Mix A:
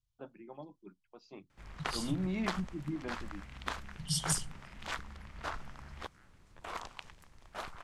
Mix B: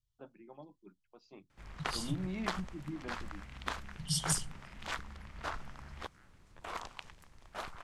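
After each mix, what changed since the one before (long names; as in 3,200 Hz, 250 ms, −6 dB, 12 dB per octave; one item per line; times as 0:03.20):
first voice −4.0 dB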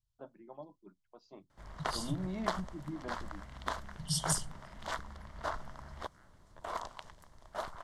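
master: add thirty-one-band graphic EQ 630 Hz +8 dB, 1,000 Hz +5 dB, 2,500 Hz −12 dB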